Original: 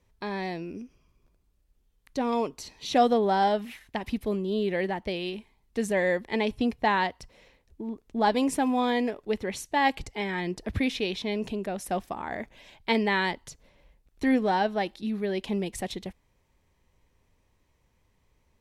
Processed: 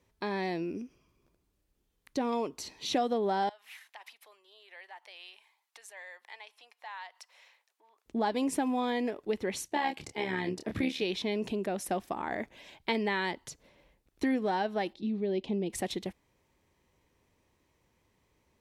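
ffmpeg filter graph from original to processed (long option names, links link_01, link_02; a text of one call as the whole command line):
ffmpeg -i in.wav -filter_complex "[0:a]asettb=1/sr,asplit=3[link_01][link_02][link_03];[link_01]atrim=end=3.494[link_04];[link_02]atrim=start=3.49:end=8.06,asetpts=PTS-STARTPTS,afade=type=in:duration=0.004:curve=qsin,afade=type=out:start_time=4.566:duration=0.004:curve=qsin,acompressor=threshold=-44dB:ratio=3:attack=3.2:release=140:knee=1:detection=peak,highpass=frequency=800:width=0.5412,highpass=frequency=800:width=1.3066[link_05];[link_03]atrim=start=8.056[link_06];[link_04][link_05]acrossfade=duration=0.004:curve1=hsin:curve2=qsin[link_07];[link_07][link_06]acrossfade=duration=0.004:curve1=qsin:curve2=hsin,asettb=1/sr,asplit=3[link_08][link_09][link_10];[link_08]atrim=end=9.684[link_11];[link_09]atrim=start=9.68:end=11.02,asetpts=PTS-STARTPTS,afade=type=in:duration=0.004:curve=qsin,afade=type=out:start_time=1.336:duration=0.004:curve=qsin,highpass=86,asplit=2[link_12][link_13];[link_13]adelay=27,volume=-5.5dB[link_14];[link_12][link_14]amix=inputs=2:normalize=0,atrim=end_sample=59094,tremolo=f=72:d=0.571[link_15];[link_10]atrim=start=11.016[link_16];[link_11][link_15]acrossfade=duration=0.004:curve1=hsin:curve2=qsin[link_17];[link_17][link_16]acrossfade=duration=0.004:curve1=qsin:curve2=hsin,asettb=1/sr,asplit=3[link_18][link_19][link_20];[link_18]atrim=end=14.934[link_21];[link_19]atrim=start=14.93:end=15.7,asetpts=PTS-STARTPTS,afade=type=in:duration=0.004:curve=qsin,afade=type=out:start_time=0.766:duration=0.004:curve=qsin,lowpass=3600,equalizer=frequency=1500:width=1.1:gain=-15[link_22];[link_20]atrim=start=15.696[link_23];[link_21][link_22]acrossfade=duration=0.004:curve1=hsin:curve2=qsin[link_24];[link_24][link_23]acrossfade=duration=0.004:curve1=qsin:curve2=hsin,highpass=frequency=120:poles=1,acompressor=threshold=-29dB:ratio=3,equalizer=frequency=330:width=2.9:gain=4" out.wav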